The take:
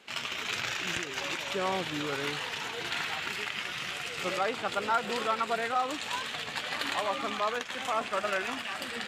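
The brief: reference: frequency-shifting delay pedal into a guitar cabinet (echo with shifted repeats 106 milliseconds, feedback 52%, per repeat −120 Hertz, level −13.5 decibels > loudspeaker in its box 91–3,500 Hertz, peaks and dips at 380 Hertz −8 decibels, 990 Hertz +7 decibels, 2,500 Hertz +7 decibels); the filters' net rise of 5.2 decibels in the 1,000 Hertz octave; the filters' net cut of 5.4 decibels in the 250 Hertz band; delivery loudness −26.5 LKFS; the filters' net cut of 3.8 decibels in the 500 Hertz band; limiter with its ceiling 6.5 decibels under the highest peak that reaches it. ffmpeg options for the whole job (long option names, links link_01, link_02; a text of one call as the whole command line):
ffmpeg -i in.wav -filter_complex "[0:a]equalizer=frequency=250:width_type=o:gain=-4,equalizer=frequency=500:width_type=o:gain=-4.5,equalizer=frequency=1000:width_type=o:gain=4,alimiter=limit=-22.5dB:level=0:latency=1,asplit=6[link_01][link_02][link_03][link_04][link_05][link_06];[link_02]adelay=106,afreqshift=-120,volume=-13.5dB[link_07];[link_03]adelay=212,afreqshift=-240,volume=-19.2dB[link_08];[link_04]adelay=318,afreqshift=-360,volume=-24.9dB[link_09];[link_05]adelay=424,afreqshift=-480,volume=-30.5dB[link_10];[link_06]adelay=530,afreqshift=-600,volume=-36.2dB[link_11];[link_01][link_07][link_08][link_09][link_10][link_11]amix=inputs=6:normalize=0,highpass=91,equalizer=frequency=380:width_type=q:width=4:gain=-8,equalizer=frequency=990:width_type=q:width=4:gain=7,equalizer=frequency=2500:width_type=q:width=4:gain=7,lowpass=frequency=3500:width=0.5412,lowpass=frequency=3500:width=1.3066,volume=4dB" out.wav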